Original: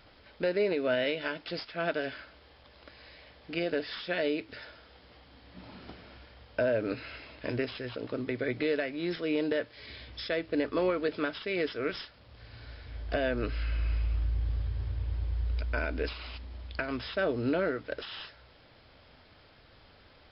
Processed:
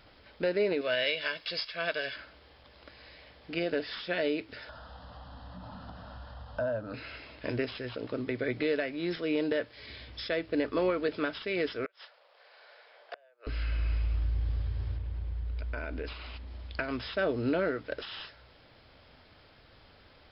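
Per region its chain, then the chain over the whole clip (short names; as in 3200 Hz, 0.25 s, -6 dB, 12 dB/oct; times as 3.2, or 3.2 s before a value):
0.81–2.16 tilt shelf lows -7.5 dB, about 1400 Hz + comb 1.8 ms, depth 46%
4.69–6.94 LPF 3200 Hz + upward compressor, threshold -32 dBFS + fixed phaser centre 930 Hz, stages 4
11.85–13.47 steep high-pass 530 Hz + tilt -2.5 dB/oct + flipped gate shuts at -26 dBFS, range -32 dB
14.97–16.47 compressor 4:1, threshold -32 dBFS + air absorption 120 m
whole clip: dry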